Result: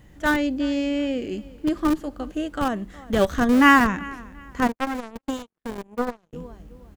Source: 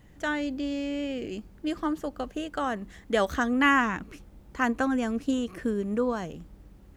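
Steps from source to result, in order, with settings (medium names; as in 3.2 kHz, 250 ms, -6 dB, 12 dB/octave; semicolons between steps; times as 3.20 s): harmonic-percussive split percussive -10 dB; feedback delay 364 ms, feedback 28%, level -20 dB; in parallel at -4 dB: Schmitt trigger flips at -24 dBFS; 4.67–6.33 s: on the sum: power-law waveshaper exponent 3; trim +7 dB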